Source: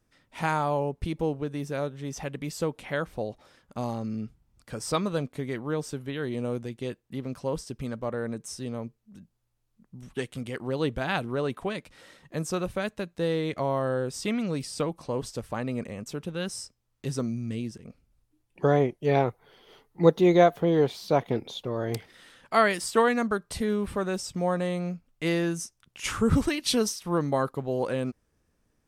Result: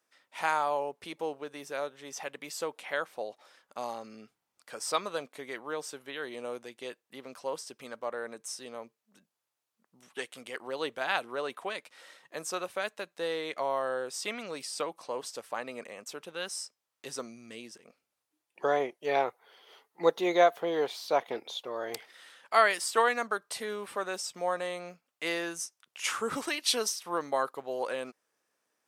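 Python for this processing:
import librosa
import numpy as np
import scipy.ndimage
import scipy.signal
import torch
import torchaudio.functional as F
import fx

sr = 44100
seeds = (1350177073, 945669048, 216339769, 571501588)

y = scipy.signal.sosfilt(scipy.signal.butter(2, 600.0, 'highpass', fs=sr, output='sos'), x)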